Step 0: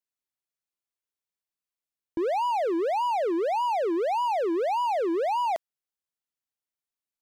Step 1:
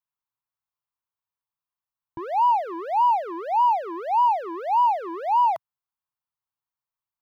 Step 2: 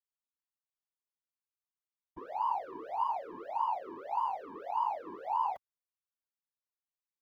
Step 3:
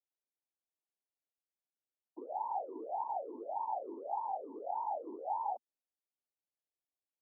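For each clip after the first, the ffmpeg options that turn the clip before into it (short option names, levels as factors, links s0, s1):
-af "equalizer=f=125:t=o:w=1:g=8,equalizer=f=250:t=o:w=1:g=-9,equalizer=f=500:t=o:w=1:g=-10,equalizer=f=1000:t=o:w=1:g=12,equalizer=f=2000:t=o:w=1:g=-5,equalizer=f=4000:t=o:w=1:g=-3,equalizer=f=8000:t=o:w=1:g=-12"
-af "afftfilt=real='hypot(re,im)*cos(2*PI*random(0))':imag='hypot(re,im)*sin(2*PI*random(1))':win_size=512:overlap=0.75,volume=0.447"
-af "asuperpass=centerf=450:order=12:qfactor=0.73,volume=1.12"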